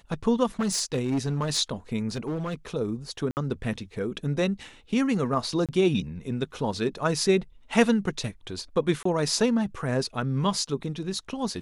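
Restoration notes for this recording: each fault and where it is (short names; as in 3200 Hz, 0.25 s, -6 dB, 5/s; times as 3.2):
0.59–1.58 clipped -21.5 dBFS
2.09–2.54 clipped -26 dBFS
3.31–3.37 gap 59 ms
5.66–5.69 gap 27 ms
9.03–9.05 gap 24 ms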